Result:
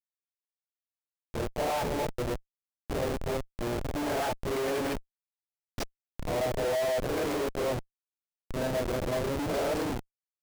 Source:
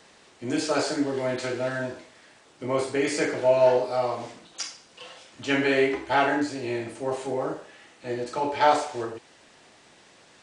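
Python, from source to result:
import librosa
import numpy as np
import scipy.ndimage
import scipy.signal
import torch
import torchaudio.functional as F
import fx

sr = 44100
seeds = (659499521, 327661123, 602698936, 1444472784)

y = x[::-1].copy()
y = fx.schmitt(y, sr, flips_db=-27.5)
y = fx.dynamic_eq(y, sr, hz=570.0, q=1.4, threshold_db=-43.0, ratio=4.0, max_db=7)
y = y * 10.0 ** (-5.5 / 20.0)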